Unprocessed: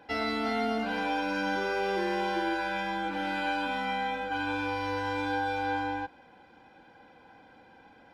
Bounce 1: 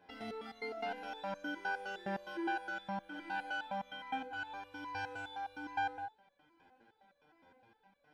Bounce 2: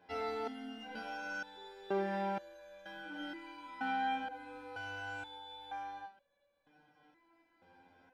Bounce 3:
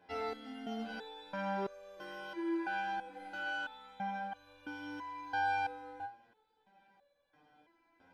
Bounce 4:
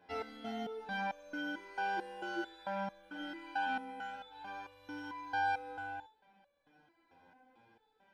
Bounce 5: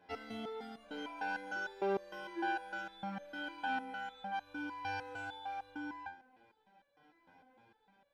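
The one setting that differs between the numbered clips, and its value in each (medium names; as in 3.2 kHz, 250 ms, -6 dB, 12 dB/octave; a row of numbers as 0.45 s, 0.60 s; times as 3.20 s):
resonator arpeggio, rate: 9.7 Hz, 2.1 Hz, 3 Hz, 4.5 Hz, 6.6 Hz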